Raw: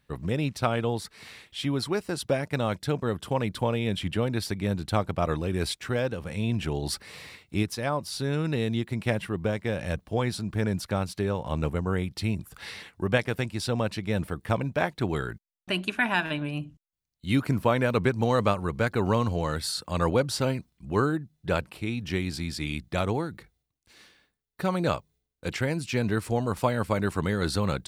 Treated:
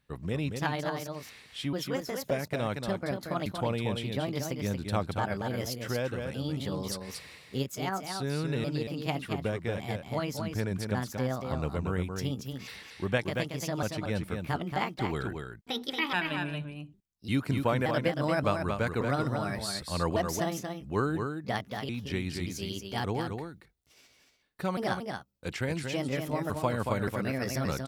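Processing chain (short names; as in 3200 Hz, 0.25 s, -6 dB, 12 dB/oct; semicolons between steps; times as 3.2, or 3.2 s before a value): trilling pitch shifter +4.5 st, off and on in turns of 0.576 s; echo 0.23 s -5.5 dB; gain -4.5 dB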